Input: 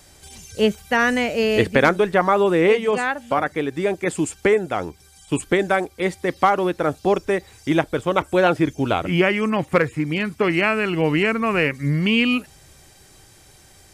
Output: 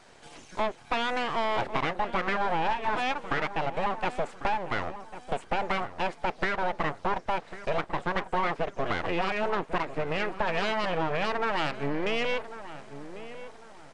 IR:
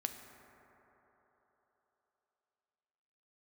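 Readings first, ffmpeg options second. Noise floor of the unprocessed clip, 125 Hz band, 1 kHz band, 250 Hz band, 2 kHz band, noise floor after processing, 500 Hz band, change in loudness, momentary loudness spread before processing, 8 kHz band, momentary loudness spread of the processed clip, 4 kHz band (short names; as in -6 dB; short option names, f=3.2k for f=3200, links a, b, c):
-50 dBFS, -13.0 dB, -5.0 dB, -15.0 dB, -9.0 dB, -51 dBFS, -12.0 dB, -10.0 dB, 7 LU, under -15 dB, 12 LU, -7.5 dB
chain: -filter_complex "[0:a]highshelf=f=2.2k:g=-11,acompressor=threshold=-23dB:ratio=6,aeval=exprs='abs(val(0))':c=same,asplit=2[a][b];[b]highpass=f=720:p=1,volume=14dB,asoftclip=type=tanh:threshold=-14dB[c];[a][c]amix=inputs=2:normalize=0,lowpass=f=2.4k:p=1,volume=-6dB,asplit=2[d][e];[e]adelay=1098,lowpass=f=1.6k:p=1,volume=-12.5dB,asplit=2[f][g];[g]adelay=1098,lowpass=f=1.6k:p=1,volume=0.36,asplit=2[h][i];[i]adelay=1098,lowpass=f=1.6k:p=1,volume=0.36,asplit=2[j][k];[k]adelay=1098,lowpass=f=1.6k:p=1,volume=0.36[l];[f][h][j][l]amix=inputs=4:normalize=0[m];[d][m]amix=inputs=2:normalize=0,aresample=22050,aresample=44100,volume=-1.5dB"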